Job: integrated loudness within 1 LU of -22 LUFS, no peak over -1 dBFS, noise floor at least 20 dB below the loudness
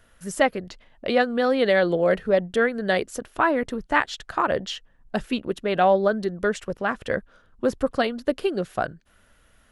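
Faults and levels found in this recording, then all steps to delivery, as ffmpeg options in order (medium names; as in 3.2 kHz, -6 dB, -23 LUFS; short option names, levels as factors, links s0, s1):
loudness -24.0 LUFS; peak level -5.0 dBFS; loudness target -22.0 LUFS
-> -af "volume=1.26"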